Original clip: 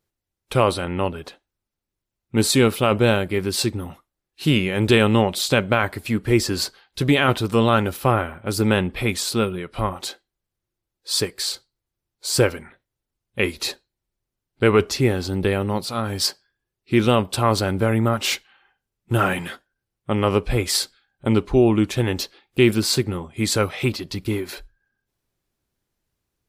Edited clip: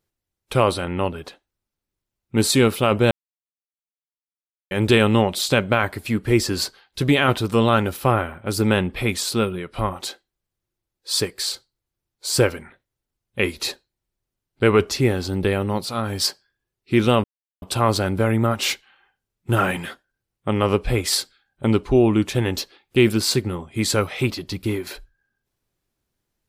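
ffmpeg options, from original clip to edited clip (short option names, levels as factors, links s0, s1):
-filter_complex "[0:a]asplit=4[s0][s1][s2][s3];[s0]atrim=end=3.11,asetpts=PTS-STARTPTS,afade=t=out:st=3.106:d=0.004:c=hsin[s4];[s1]atrim=start=3.11:end=4.71,asetpts=PTS-STARTPTS,volume=0[s5];[s2]atrim=start=4.71:end=17.24,asetpts=PTS-STARTPTS,afade=t=in:d=0.004:c=hsin,afade=t=out:st=12.526:d=0.004:c=hsin,apad=pad_dur=0.38[s6];[s3]atrim=start=17.24,asetpts=PTS-STARTPTS,afade=t=in:d=0.004:c=hsin[s7];[s4][s5][s6][s7]concat=n=4:v=0:a=1"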